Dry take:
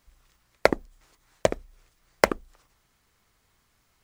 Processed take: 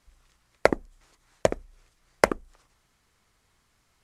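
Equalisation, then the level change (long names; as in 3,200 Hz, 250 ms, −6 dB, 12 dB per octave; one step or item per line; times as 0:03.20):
low-pass filter 12,000 Hz 24 dB per octave
dynamic equaliser 3,800 Hz, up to −5 dB, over −47 dBFS, Q 1.1
0.0 dB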